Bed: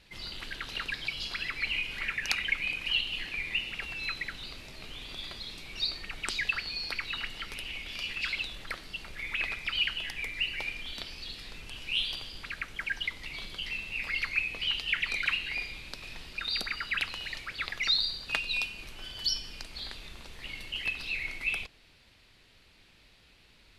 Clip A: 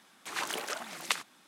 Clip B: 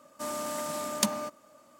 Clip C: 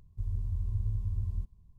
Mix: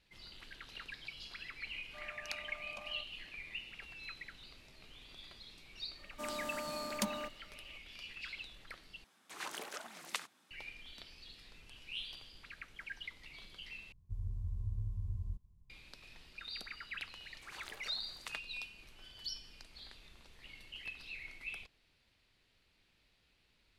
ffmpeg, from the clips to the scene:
ffmpeg -i bed.wav -i cue0.wav -i cue1.wav -i cue2.wav -filter_complex "[2:a]asplit=2[link_01][link_02];[1:a]asplit=2[link_03][link_04];[0:a]volume=-13dB[link_05];[link_01]asplit=3[link_06][link_07][link_08];[link_06]bandpass=frequency=730:width_type=q:width=8,volume=0dB[link_09];[link_07]bandpass=frequency=1090:width_type=q:width=8,volume=-6dB[link_10];[link_08]bandpass=frequency=2440:width_type=q:width=8,volume=-9dB[link_11];[link_09][link_10][link_11]amix=inputs=3:normalize=0[link_12];[link_02]equalizer=frequency=8800:width=0.48:gain=-5.5[link_13];[link_05]asplit=3[link_14][link_15][link_16];[link_14]atrim=end=9.044[link_17];[link_03]atrim=end=1.47,asetpts=PTS-STARTPTS,volume=-9dB[link_18];[link_15]atrim=start=10.506:end=13.924[link_19];[3:a]atrim=end=1.78,asetpts=PTS-STARTPTS,volume=-7dB[link_20];[link_16]atrim=start=15.696[link_21];[link_12]atrim=end=1.79,asetpts=PTS-STARTPTS,volume=-8.5dB,afade=type=in:duration=0.004:curve=hsin,afade=type=out:start_time=1.786:duration=0.004:curve=hsin,adelay=1740[link_22];[link_13]atrim=end=1.79,asetpts=PTS-STARTPTS,volume=-7dB,afade=type=in:duration=0.004:curve=hsin,afade=type=out:start_time=1.786:duration=0.004:curve=hsin,adelay=5990[link_23];[link_04]atrim=end=1.47,asetpts=PTS-STARTPTS,volume=-17.5dB,afade=type=in:duration=0.004:curve=hsin,afade=type=out:start_time=1.466:duration=0.004:curve=hsin,adelay=756756S[link_24];[link_17][link_18]acrossfade=duration=0.004:curve1=hsin:curve2=hsin[link_25];[link_25][link_19]acrossfade=duration=0.004:curve1=hsin:curve2=hsin[link_26];[link_26][link_20]acrossfade=duration=0.004:curve1=hsin:curve2=hsin[link_27];[link_27][link_21]acrossfade=duration=0.004:curve1=hsin:curve2=hsin[link_28];[link_28][link_22][link_23][link_24]amix=inputs=4:normalize=0" out.wav

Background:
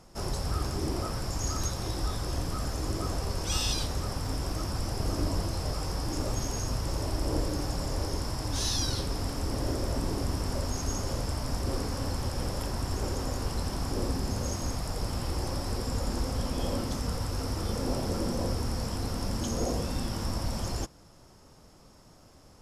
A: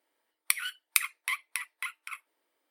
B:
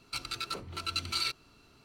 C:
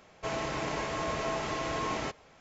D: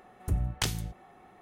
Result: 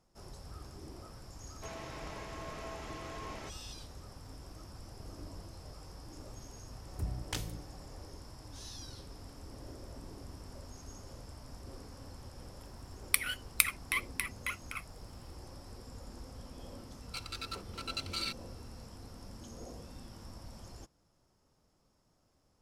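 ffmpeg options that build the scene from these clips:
ffmpeg -i bed.wav -i cue0.wav -i cue1.wav -i cue2.wav -i cue3.wav -filter_complex "[0:a]volume=-17.5dB[link_01];[3:a]atrim=end=2.4,asetpts=PTS-STARTPTS,volume=-12dB,afade=type=in:duration=0.004:curve=hsin,afade=type=out:start_time=2.396:duration=0.004:curve=hsin,adelay=1390[link_02];[4:a]atrim=end=1.41,asetpts=PTS-STARTPTS,volume=-8.5dB,afade=type=in:duration=0.004:curve=hsin,afade=type=out:start_time=1.406:duration=0.004:curve=hsin,adelay=6710[link_03];[1:a]atrim=end=2.7,asetpts=PTS-STARTPTS,volume=-1.5dB,afade=type=in:duration=0.004:curve=hsin,afade=type=out:start_time=2.696:duration=0.004:curve=hsin,adelay=12640[link_04];[2:a]atrim=end=1.84,asetpts=PTS-STARTPTS,volume=-5.5dB,afade=type=in:duration=0.004:curve=hsin,afade=type=out:start_time=1.836:duration=0.004:curve=hsin,adelay=17010[link_05];[link_01][link_02][link_03][link_04][link_05]amix=inputs=5:normalize=0" out.wav

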